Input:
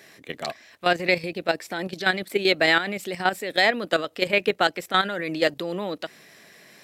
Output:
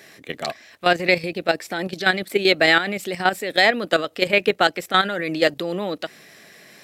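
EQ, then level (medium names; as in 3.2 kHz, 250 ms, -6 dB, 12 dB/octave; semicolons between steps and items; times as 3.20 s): band-stop 980 Hz, Q 15; +3.5 dB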